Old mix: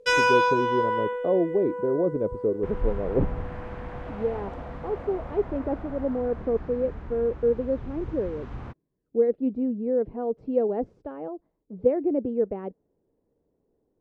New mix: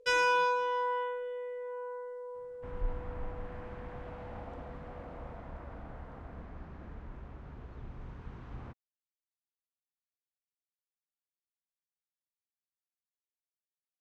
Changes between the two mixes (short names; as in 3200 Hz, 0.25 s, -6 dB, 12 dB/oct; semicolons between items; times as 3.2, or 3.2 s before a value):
speech: muted; first sound -6.5 dB; second sound -7.5 dB